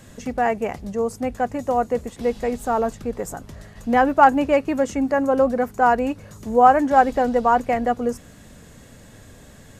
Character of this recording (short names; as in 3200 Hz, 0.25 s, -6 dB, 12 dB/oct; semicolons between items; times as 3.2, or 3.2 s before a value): noise floor -46 dBFS; spectral tilt -0.5 dB/oct